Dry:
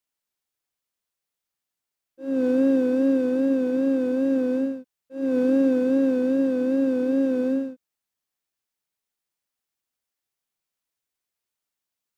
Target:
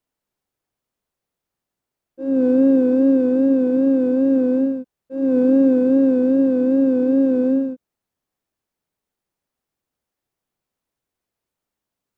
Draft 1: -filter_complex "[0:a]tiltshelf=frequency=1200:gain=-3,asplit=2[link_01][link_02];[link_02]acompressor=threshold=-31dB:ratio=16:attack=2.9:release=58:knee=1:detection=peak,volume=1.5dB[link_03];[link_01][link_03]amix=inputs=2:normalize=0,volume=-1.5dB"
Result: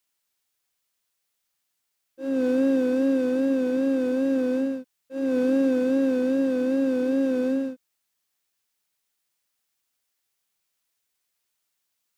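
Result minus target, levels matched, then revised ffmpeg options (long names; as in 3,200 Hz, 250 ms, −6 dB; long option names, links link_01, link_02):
1,000 Hz band +6.0 dB
-filter_complex "[0:a]tiltshelf=frequency=1200:gain=7,asplit=2[link_01][link_02];[link_02]acompressor=threshold=-31dB:ratio=16:attack=2.9:release=58:knee=1:detection=peak,volume=1.5dB[link_03];[link_01][link_03]amix=inputs=2:normalize=0,volume=-1.5dB"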